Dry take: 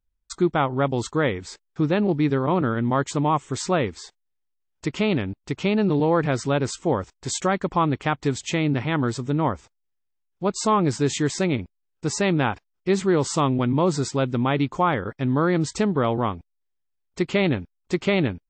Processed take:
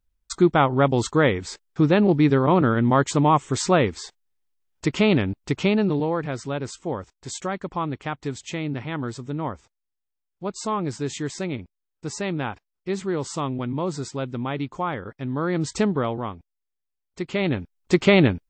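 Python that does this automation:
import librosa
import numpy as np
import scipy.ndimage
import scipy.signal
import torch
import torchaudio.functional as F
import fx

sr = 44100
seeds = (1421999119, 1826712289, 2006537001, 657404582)

y = fx.gain(x, sr, db=fx.line((5.57, 3.5), (6.21, -6.0), (15.32, -6.0), (15.83, 1.0), (16.21, -6.0), (17.22, -6.0), (17.94, 5.5)))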